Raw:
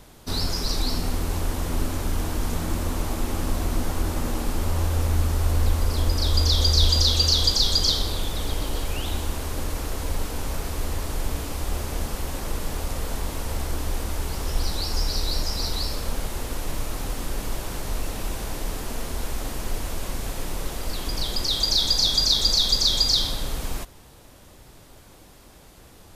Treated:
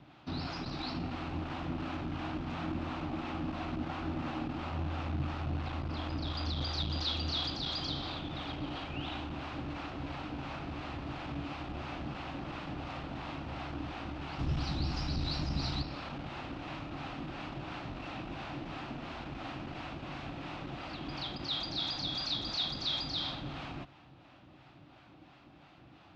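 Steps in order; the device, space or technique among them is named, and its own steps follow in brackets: guitar amplifier with harmonic tremolo (harmonic tremolo 2.9 Hz, depth 50%, crossover 540 Hz; soft clip -18.5 dBFS, distortion -15 dB; speaker cabinet 92–3900 Hz, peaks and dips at 140 Hz +9 dB, 300 Hz +9 dB, 450 Hz -9 dB, 750 Hz +6 dB, 1300 Hz +5 dB, 2600 Hz +6 dB); 14.39–15.82 tone controls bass +11 dB, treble +7 dB; gain -6 dB

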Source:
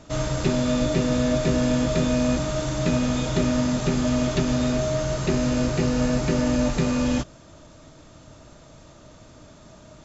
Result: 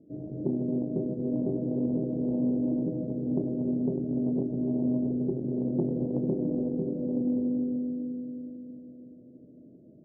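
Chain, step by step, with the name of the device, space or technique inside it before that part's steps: inverse Chebyshev low-pass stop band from 980 Hz, stop band 50 dB; 5.67–6.35 comb 5.8 ms, depth 68%; thinning echo 0.294 s, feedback 51%, high-pass 220 Hz, level -9.5 dB; digital reverb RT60 3.8 s, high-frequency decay 1×, pre-delay 15 ms, DRR 0.5 dB; public-address speaker with an overloaded transformer (core saturation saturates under 160 Hz; BPF 270–5100 Hz)

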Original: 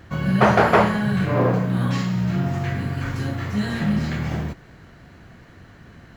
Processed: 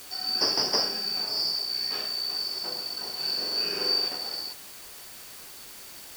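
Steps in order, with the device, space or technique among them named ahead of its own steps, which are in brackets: 3.15–4.08 flutter echo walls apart 7.6 m, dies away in 1.2 s; split-band scrambled radio (four-band scrambler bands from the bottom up 2341; BPF 330–3400 Hz; white noise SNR 14 dB); gain -3 dB

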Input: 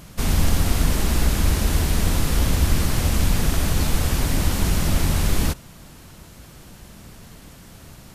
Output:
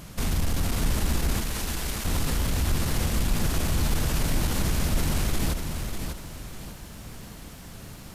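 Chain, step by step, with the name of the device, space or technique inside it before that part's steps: soft clipper into limiter (soft clip -11 dBFS, distortion -19 dB; limiter -18.5 dBFS, peak gain reduction 7 dB); 1.41–2.05 HPF 1000 Hz 6 dB/oct; lo-fi delay 0.595 s, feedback 35%, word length 10-bit, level -6 dB

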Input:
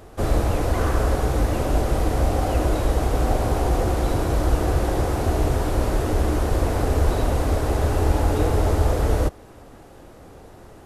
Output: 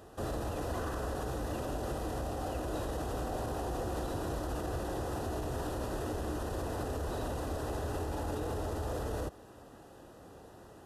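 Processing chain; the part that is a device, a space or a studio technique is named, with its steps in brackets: PA system with an anti-feedback notch (HPF 100 Hz 6 dB/oct; Butterworth band-stop 2200 Hz, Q 5.1; limiter -21 dBFS, peak gain reduction 11 dB); gain -7 dB

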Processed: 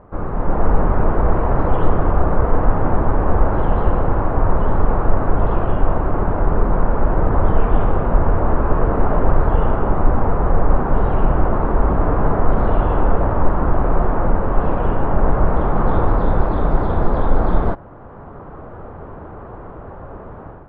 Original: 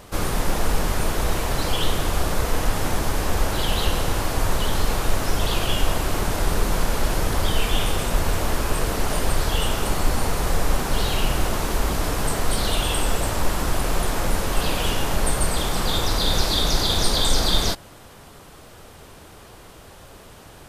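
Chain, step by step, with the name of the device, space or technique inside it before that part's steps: action camera in a waterproof case (LPF 1300 Hz 24 dB/oct; AGC; AAC 64 kbps 44100 Hz)

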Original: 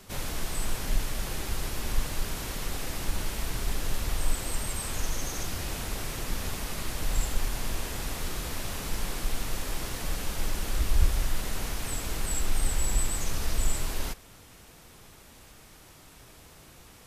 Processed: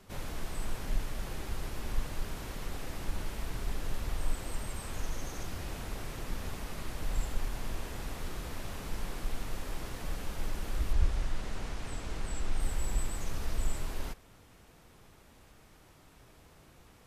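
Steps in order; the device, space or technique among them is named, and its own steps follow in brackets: behind a face mask (high shelf 2900 Hz -8 dB); 10.93–12.6 LPF 8300 Hz 12 dB/oct; gain -4.5 dB

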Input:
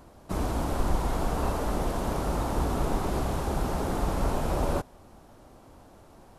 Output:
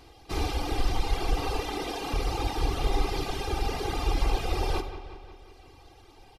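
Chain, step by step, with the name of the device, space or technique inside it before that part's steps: microphone above a desk (comb 2.5 ms, depth 69%; reverb RT60 0.50 s, pre-delay 44 ms, DRR 3.5 dB); 1.62–2.14 steep high-pass 150 Hz; reverb removal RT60 1.5 s; band shelf 3400 Hz +11 dB; dark delay 0.18 s, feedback 61%, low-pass 3600 Hz, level -12 dB; gain -3 dB

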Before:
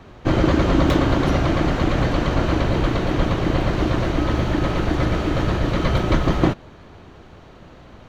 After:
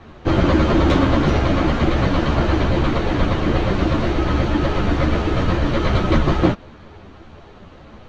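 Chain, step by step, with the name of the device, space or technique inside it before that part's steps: string-machine ensemble chorus (ensemble effect; LPF 6200 Hz 12 dB/oct); gain +5 dB

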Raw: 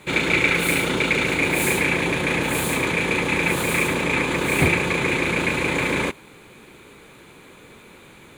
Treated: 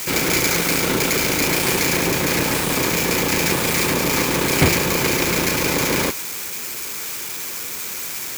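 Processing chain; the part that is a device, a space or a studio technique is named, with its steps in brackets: budget class-D amplifier (switching dead time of 0.17 ms; switching spikes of -16 dBFS); gain +3.5 dB

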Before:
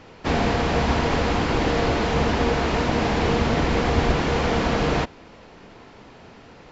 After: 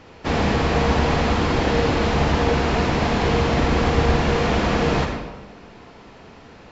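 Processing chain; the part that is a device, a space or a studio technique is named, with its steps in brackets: bathroom (reverb RT60 1.1 s, pre-delay 49 ms, DRR 3 dB)

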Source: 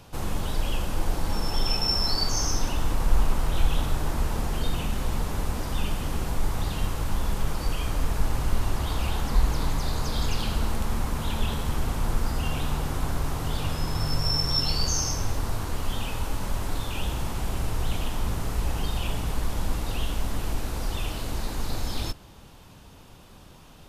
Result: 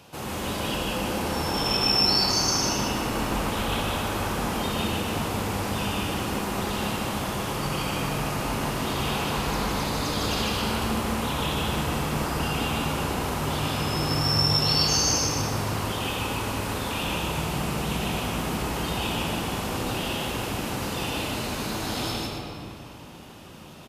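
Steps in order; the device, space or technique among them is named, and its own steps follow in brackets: stadium PA (HPF 130 Hz 12 dB/oct; bell 2700 Hz +3.5 dB 0.56 oct; loudspeakers at several distances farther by 52 m -1 dB, 94 m -10 dB; reverb RT60 3.0 s, pre-delay 22 ms, DRR 0 dB)

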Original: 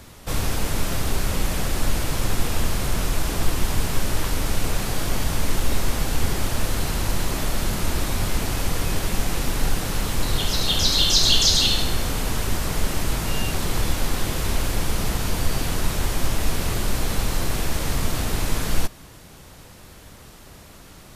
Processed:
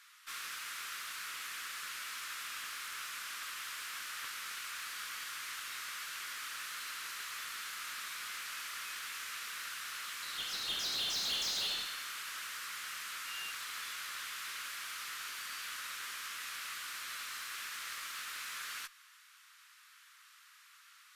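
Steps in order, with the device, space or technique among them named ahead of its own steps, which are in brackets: steep high-pass 1200 Hz 48 dB/oct; tube preamp driven hard (tube stage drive 23 dB, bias 0.35; low shelf 180 Hz -5.5 dB; high shelf 3700 Hz -8.5 dB); gain -5 dB

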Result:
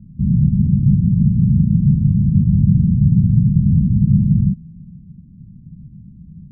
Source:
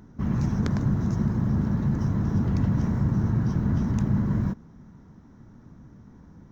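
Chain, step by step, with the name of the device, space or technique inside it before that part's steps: the neighbour's flat through the wall (LPF 190 Hz 24 dB/oct; bell 170 Hz +8 dB 0.56 oct); gain +8.5 dB

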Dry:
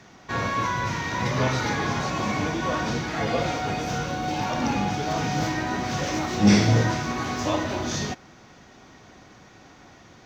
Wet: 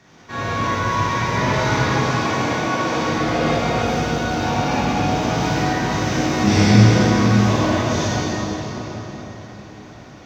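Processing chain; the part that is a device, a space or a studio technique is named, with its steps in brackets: 1.86–2.96 HPF 260 Hz 12 dB/oct; cathedral (reverb RT60 4.6 s, pre-delay 22 ms, DRR -9.5 dB); gain -3.5 dB

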